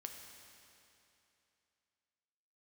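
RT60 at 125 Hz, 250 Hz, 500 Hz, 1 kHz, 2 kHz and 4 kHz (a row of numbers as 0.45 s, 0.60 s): 2.9 s, 2.9 s, 2.9 s, 2.9 s, 2.9 s, 2.7 s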